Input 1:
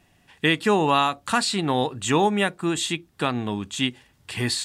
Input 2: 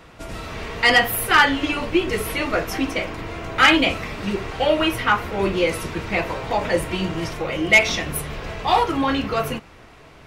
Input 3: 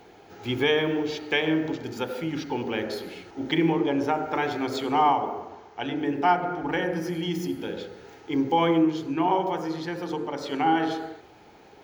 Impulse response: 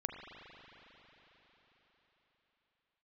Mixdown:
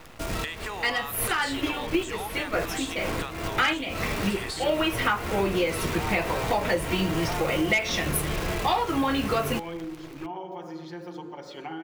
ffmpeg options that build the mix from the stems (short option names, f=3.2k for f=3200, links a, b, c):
-filter_complex "[0:a]highpass=790,asoftclip=type=tanh:threshold=-13dB,volume=-1.5dB,asplit=2[a][b];[1:a]acrusher=bits=7:dc=4:mix=0:aa=0.000001,volume=2dB[c];[2:a]aecho=1:1:5.6:0.64,adelay=1050,volume=-9.5dB[d];[b]apad=whole_len=452489[e];[c][e]sidechaincompress=threshold=-39dB:ratio=5:attack=28:release=156[f];[a][d]amix=inputs=2:normalize=0,acompressor=threshold=-33dB:ratio=6,volume=0dB[g];[f][g]amix=inputs=2:normalize=0,acompressor=threshold=-21dB:ratio=8"